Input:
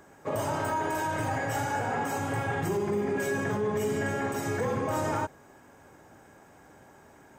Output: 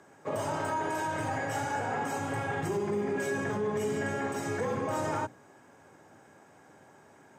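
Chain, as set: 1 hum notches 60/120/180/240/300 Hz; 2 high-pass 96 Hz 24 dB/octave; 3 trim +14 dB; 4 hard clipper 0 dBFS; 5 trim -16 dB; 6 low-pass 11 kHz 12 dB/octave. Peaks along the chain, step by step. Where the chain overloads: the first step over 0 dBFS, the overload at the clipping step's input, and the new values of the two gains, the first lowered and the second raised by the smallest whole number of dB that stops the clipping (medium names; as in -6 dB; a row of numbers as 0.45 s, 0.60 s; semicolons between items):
-19.5 dBFS, -18.5 dBFS, -4.5 dBFS, -4.5 dBFS, -20.5 dBFS, -20.5 dBFS; nothing clips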